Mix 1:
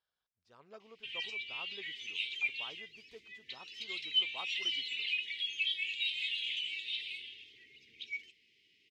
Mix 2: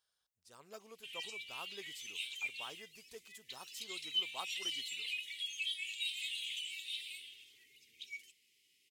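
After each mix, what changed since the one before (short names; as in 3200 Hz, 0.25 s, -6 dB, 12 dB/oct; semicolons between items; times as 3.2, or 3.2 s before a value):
background -9.5 dB; master: remove air absorption 240 m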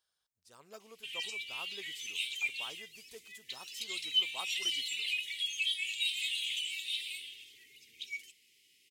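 background +5.5 dB; reverb: on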